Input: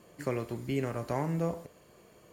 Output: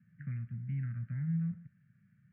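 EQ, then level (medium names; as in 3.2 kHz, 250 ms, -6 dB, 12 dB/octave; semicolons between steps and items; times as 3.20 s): elliptic band-pass 110–1500 Hz, stop band 50 dB; inverse Chebyshev band-stop 310–1100 Hz, stop band 40 dB; distance through air 290 m; +2.5 dB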